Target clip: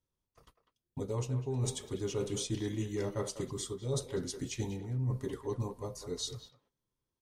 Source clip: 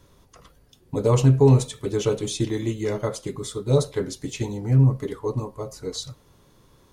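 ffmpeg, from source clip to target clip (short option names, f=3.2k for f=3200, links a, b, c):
-filter_complex "[0:a]agate=range=-26dB:threshold=-48dB:ratio=16:detection=peak,bass=f=250:g=2,treble=f=4k:g=4,areverse,acompressor=threshold=-22dB:ratio=16,areverse,asplit=2[a][b];[b]adelay=190,highpass=300,lowpass=3.4k,asoftclip=type=hard:threshold=-21dB,volume=-10dB[c];[a][c]amix=inputs=2:normalize=0,asetrate=42336,aresample=44100,volume=-8dB"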